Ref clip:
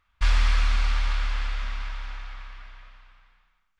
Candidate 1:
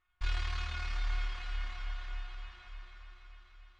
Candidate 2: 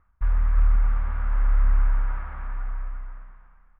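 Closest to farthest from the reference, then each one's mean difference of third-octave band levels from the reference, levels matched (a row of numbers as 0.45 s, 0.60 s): 1, 2; 4.5 dB, 12.5 dB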